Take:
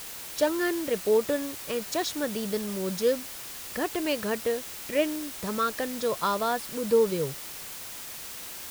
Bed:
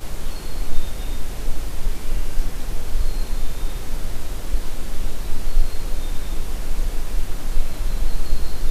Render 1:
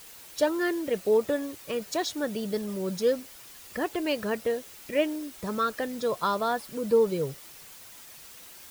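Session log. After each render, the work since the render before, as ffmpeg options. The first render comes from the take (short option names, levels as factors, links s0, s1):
-af "afftdn=nr=9:nf=-40"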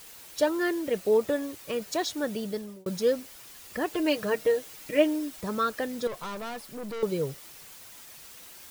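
-filter_complex "[0:a]asettb=1/sr,asplit=3[s0][s1][s2];[s0]atrim=end=3.874[s3];[s1]atrim=start=3.87:end=5.41,asetpts=PTS-STARTPTS,afade=t=in:d=0.004:c=qsin,afade=t=out:st=1.536:d=0.004:c=qsin,aecho=1:1:6.5:0.65,atrim=end_sample=67914[s4];[s2]atrim=start=5.406[s5];[s3][s4]acrossfade=d=0.004:c1=hsin:c2=qsin[s6];[s6][s5]acrossfade=d=0.004:c1=qsin:c2=hsin,asettb=1/sr,asplit=3[s7][s8][s9];[s7]atrim=end=6.074[s10];[s8]atrim=start=6.07:end=7.03,asetpts=PTS-STARTPTS,afade=t=in:d=0.004:c=qsin,afade=t=out:st=0.956:d=0.004:c=qsin,aeval=exprs='(tanh(50.1*val(0)+0.45)-tanh(0.45))/50.1':c=same[s11];[s9]atrim=start=7.026[s12];[s10][s11]acrossfade=d=0.004:c1=hsin:c2=qsin[s13];[s13][s12]acrossfade=d=0.004:c1=qsin:c2=hsin,asplit=2[s14][s15];[s14]atrim=end=2.86,asetpts=PTS-STARTPTS,afade=t=out:st=2.23:d=0.63:c=qsin[s16];[s15]atrim=start=2.86,asetpts=PTS-STARTPTS,afade=t=in:d=0.004:c=hsin[s17];[s16][s17]concat=n=2:v=0:a=1"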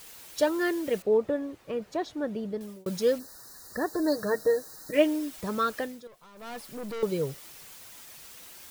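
-filter_complex "[0:a]asettb=1/sr,asplit=3[s0][s1][s2];[s0]atrim=end=1.024[s3];[s1]atrim=start=1.02:end=2.61,asetpts=PTS-STARTPTS,afade=t=in:d=0.004:c=qsin,afade=t=out:st=1.586:d=0.004:c=qsin,lowpass=f=1000:p=1[s4];[s2]atrim=start=2.606[s5];[s3][s4]acrossfade=d=0.004:c1=hsin:c2=qsin[s6];[s6][s5]acrossfade=d=0.004:c1=qsin:c2=hsin,asplit=3[s7][s8][s9];[s7]afade=t=out:st=3.18:d=0.02[s10];[s8]asuperstop=centerf=2700:order=20:qfactor=1.4,afade=t=in:st=3.18:d=0.02,afade=t=out:st=4.92:d=0.02[s11];[s9]afade=t=in:st=4.92:d=0.02[s12];[s10][s11][s12]amix=inputs=3:normalize=0,asplit=3[s13][s14][s15];[s13]atrim=end=6.03,asetpts=PTS-STARTPTS,afade=t=out:st=5.78:d=0.25:silence=0.141254[s16];[s14]atrim=start=6.03:end=6.34,asetpts=PTS-STARTPTS,volume=0.141[s17];[s15]atrim=start=6.34,asetpts=PTS-STARTPTS,afade=t=in:d=0.25:silence=0.141254[s18];[s16][s17][s18]concat=n=3:v=0:a=1"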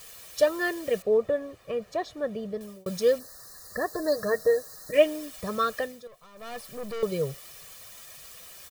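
-af "aecho=1:1:1.7:0.55"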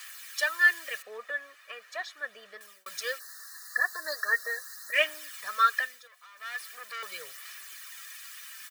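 -af "aphaser=in_gain=1:out_gain=1:delay=4.1:decay=0.32:speed=0.4:type=sinusoidal,highpass=f=1600:t=q:w=2.7"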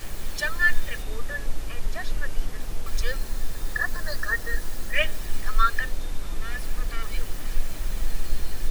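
-filter_complex "[1:a]volume=0.531[s0];[0:a][s0]amix=inputs=2:normalize=0"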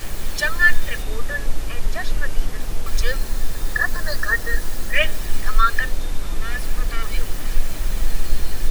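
-af "volume=2,alimiter=limit=0.708:level=0:latency=1"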